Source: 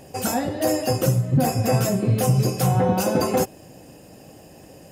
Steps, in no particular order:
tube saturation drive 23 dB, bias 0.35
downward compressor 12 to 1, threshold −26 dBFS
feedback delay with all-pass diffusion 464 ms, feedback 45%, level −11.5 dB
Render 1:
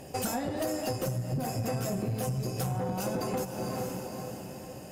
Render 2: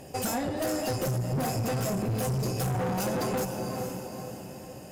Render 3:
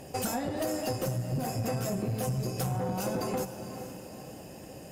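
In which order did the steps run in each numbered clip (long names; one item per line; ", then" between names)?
feedback delay with all-pass diffusion, then downward compressor, then tube saturation
feedback delay with all-pass diffusion, then tube saturation, then downward compressor
downward compressor, then feedback delay with all-pass diffusion, then tube saturation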